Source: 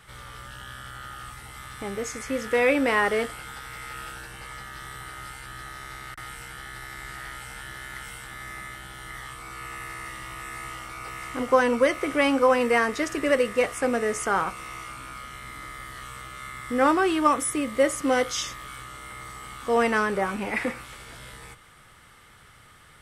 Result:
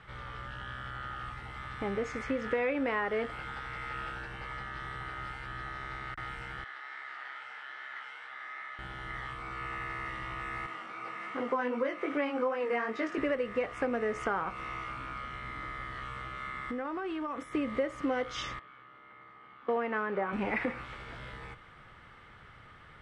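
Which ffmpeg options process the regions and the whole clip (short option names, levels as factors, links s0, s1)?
-filter_complex "[0:a]asettb=1/sr,asplit=3[s0][s1][s2];[s0]atrim=end=6.644[s3];[s1]atrim=start=6.64:end=8.79,asetpts=PTS-STARTPTS,afade=t=in:d=0.004:c=qsin,afade=t=out:st=2.146:d=0.004:c=qsin,flanger=delay=16.5:depth=5.7:speed=2.4,highpass=740,lowpass=6200[s4];[s2]atrim=start=8.786[s5];[s3][s4]acrossfade=d=0.004:c1=hsin:c2=qsin[s6];[s6][s5]acrossfade=d=0.004:c1=qsin:c2=hsin,asettb=1/sr,asplit=3[s7][s8][s9];[s7]atrim=end=10.664[s10];[s8]atrim=start=10.66:end=13.18,asetpts=PTS-STARTPTS,afade=t=in:d=0.004:c=qsin,afade=t=out:st=2.516:d=0.004:c=qsin,highpass=f=170:w=0.5412,highpass=f=170:w=1.3066,flanger=delay=17.5:depth=3.4:speed=2.6[s11];[s9]atrim=start=13.176[s12];[s10][s11]acrossfade=d=0.004:c1=hsin:c2=qsin[s13];[s13][s12]acrossfade=d=0.004:c1=qsin:c2=hsin,asettb=1/sr,asplit=3[s14][s15][s16];[s14]atrim=end=16.364[s17];[s15]atrim=start=16.36:end=17.55,asetpts=PTS-STARTPTS,afade=t=in:d=0.004:c=qsin,afade=t=out:st=1.186:d=0.004:c=qsin,bandreject=f=60:t=h:w=6,bandreject=f=120:t=h:w=6,acompressor=threshold=0.0251:ratio=16:attack=3.2:release=140:knee=1:detection=peak[s18];[s16]atrim=start=17.546[s19];[s17][s18]acrossfade=d=0.004:c1=hsin:c2=qsin[s20];[s20][s19]acrossfade=d=0.004:c1=qsin:c2=hsin,asettb=1/sr,asplit=3[s21][s22][s23];[s21]atrim=end=18.594[s24];[s22]atrim=start=18.59:end=20.33,asetpts=PTS-STARTPTS,afade=t=in:d=0.004:c=qsin,afade=t=out:st=1.736:d=0.004:c=qsin,agate=range=0.251:threshold=0.02:ratio=16:release=100:detection=peak,acrusher=bits=6:mode=log:mix=0:aa=0.000001,highpass=190,lowpass=3100[s25];[s23]atrim=start=20.326[s26];[s24][s25]acrossfade=d=0.004:c1=hsin:c2=qsin[s27];[s27][s26]acrossfade=d=0.004:c1=qsin:c2=hsin,lowpass=2600,acompressor=threshold=0.0398:ratio=6"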